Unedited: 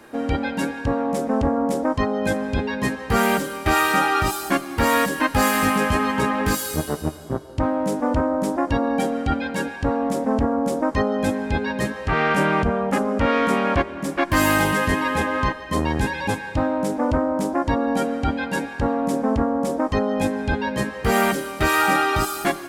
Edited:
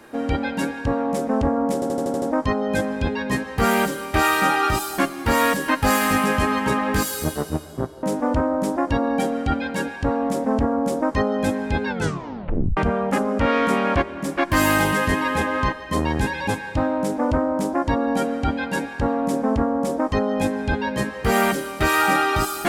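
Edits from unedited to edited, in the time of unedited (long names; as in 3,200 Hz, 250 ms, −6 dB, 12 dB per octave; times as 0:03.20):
0:01.74: stutter 0.08 s, 7 plays
0:07.55–0:07.83: remove
0:11.66: tape stop 0.91 s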